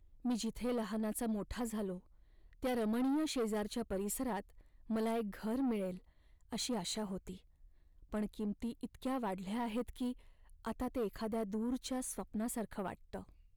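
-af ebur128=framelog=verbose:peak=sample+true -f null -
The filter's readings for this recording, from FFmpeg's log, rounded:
Integrated loudness:
  I:         -39.1 LUFS
  Threshold: -49.6 LUFS
Loudness range:
  LRA:         4.0 LU
  Threshold: -59.7 LUFS
  LRA low:   -41.7 LUFS
  LRA high:  -37.8 LUFS
Sample peak:
  Peak:      -31.1 dBFS
True peak:
  Peak:      -30.3 dBFS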